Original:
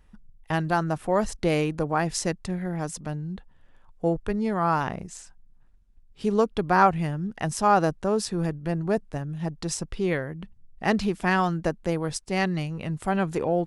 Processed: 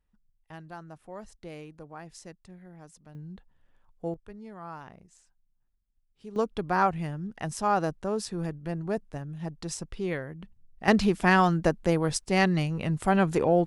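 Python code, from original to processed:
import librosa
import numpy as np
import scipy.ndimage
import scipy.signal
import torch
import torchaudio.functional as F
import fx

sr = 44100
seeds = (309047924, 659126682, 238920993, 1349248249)

y = fx.gain(x, sr, db=fx.steps((0.0, -19.0), (3.15, -9.0), (4.14, -18.0), (6.36, -5.5), (10.88, 2.0)))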